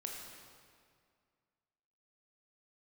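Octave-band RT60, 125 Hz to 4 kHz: 2.2, 2.2, 2.1, 2.1, 1.8, 1.6 s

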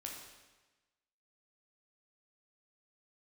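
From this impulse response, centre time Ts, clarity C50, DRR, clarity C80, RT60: 53 ms, 2.5 dB, -1.0 dB, 5.0 dB, 1.2 s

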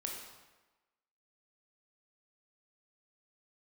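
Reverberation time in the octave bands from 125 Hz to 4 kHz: 0.95, 1.1, 1.1, 1.2, 1.1, 0.90 s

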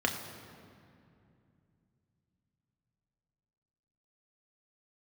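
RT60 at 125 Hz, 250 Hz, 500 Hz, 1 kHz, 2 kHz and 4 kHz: 4.5, 3.7, 2.7, 2.4, 2.1, 1.6 s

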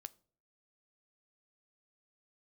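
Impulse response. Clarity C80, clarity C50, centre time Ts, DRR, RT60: 28.0 dB, 24.0 dB, 2 ms, 14.5 dB, 0.50 s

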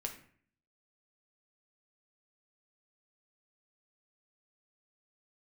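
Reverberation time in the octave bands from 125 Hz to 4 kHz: 0.70, 0.70, 0.55, 0.50, 0.55, 0.40 s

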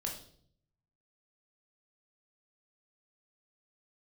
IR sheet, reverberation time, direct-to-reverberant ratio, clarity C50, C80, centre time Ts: 0.60 s, -1.0 dB, 6.5 dB, 10.5 dB, 26 ms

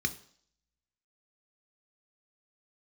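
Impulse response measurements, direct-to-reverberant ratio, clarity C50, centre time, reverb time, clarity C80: 8.0 dB, 16.5 dB, 5 ms, 0.55 s, 19.5 dB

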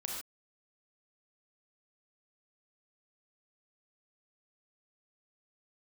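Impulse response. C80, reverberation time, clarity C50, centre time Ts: 3.5 dB, not exponential, 1.0 dB, 52 ms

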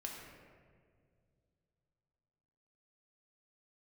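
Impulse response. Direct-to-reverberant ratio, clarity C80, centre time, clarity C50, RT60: -1.5 dB, 3.0 dB, 78 ms, 1.5 dB, 2.1 s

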